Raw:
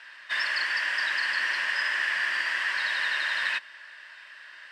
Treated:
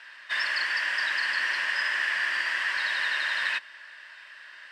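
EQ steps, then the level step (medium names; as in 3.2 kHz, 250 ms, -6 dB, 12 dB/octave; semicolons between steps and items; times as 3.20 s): high-pass 94 Hz; 0.0 dB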